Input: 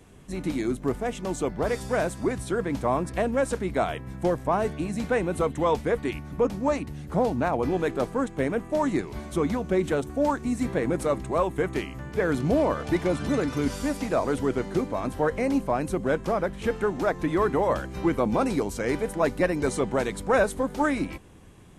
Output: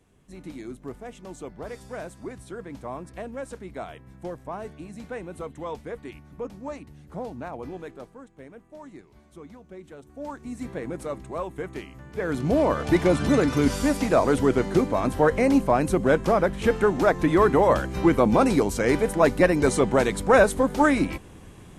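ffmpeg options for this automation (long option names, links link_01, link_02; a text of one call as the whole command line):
ffmpeg -i in.wav -af "volume=13.5dB,afade=type=out:start_time=7.66:duration=0.54:silence=0.375837,afade=type=in:start_time=9.97:duration=0.68:silence=0.251189,afade=type=in:start_time=12.08:duration=0.94:silence=0.251189" out.wav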